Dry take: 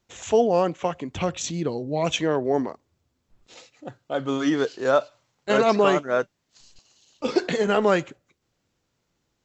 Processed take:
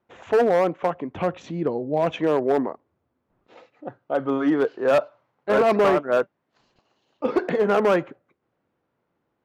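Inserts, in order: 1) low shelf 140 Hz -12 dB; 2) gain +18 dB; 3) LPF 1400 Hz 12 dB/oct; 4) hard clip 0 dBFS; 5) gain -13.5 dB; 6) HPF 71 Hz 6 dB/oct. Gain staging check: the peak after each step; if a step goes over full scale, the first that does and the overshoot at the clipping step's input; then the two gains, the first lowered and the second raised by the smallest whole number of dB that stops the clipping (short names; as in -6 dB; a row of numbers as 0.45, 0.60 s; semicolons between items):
-8.0, +10.0, +8.5, 0.0, -13.5, -11.5 dBFS; step 2, 8.5 dB; step 2 +9 dB, step 5 -4.5 dB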